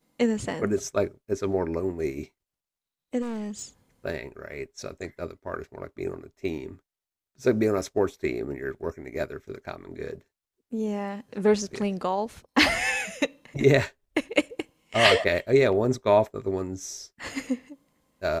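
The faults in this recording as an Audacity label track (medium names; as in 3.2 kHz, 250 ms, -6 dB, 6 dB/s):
3.210000	3.630000	clipped -30 dBFS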